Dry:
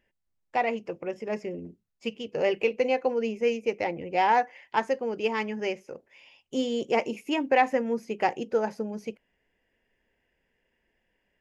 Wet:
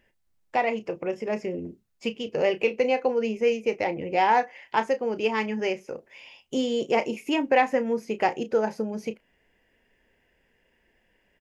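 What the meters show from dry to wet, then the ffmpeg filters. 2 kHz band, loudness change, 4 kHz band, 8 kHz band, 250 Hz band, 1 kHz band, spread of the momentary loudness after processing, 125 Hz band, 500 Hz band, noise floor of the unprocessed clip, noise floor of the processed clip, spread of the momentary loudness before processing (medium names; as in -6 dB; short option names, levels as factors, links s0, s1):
+2.0 dB, +2.0 dB, +2.5 dB, no reading, +2.5 dB, +1.5 dB, 12 LU, +3.0 dB, +2.5 dB, -77 dBFS, -69 dBFS, 14 LU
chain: -filter_complex "[0:a]asplit=2[s0][s1];[s1]acompressor=threshold=0.0126:ratio=6,volume=1.19[s2];[s0][s2]amix=inputs=2:normalize=0,asplit=2[s3][s4];[s4]adelay=32,volume=0.237[s5];[s3][s5]amix=inputs=2:normalize=0"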